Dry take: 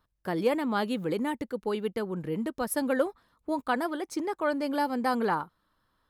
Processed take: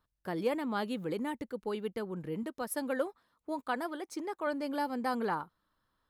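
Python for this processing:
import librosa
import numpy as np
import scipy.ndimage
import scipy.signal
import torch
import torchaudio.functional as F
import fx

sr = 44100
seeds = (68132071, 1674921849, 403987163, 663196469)

y = fx.low_shelf(x, sr, hz=120.0, db=-12.0, at=(2.43, 4.47))
y = y * librosa.db_to_amplitude(-5.5)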